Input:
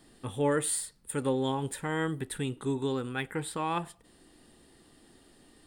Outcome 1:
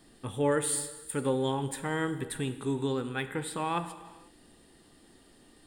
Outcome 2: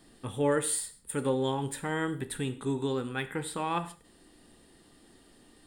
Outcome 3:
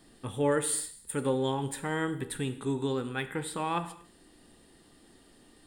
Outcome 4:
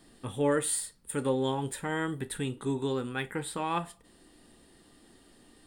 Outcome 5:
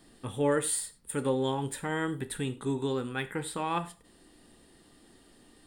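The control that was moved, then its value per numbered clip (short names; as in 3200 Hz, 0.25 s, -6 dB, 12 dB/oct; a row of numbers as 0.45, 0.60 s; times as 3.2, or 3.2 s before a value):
non-linear reverb, gate: 530, 190, 290, 80, 130 ms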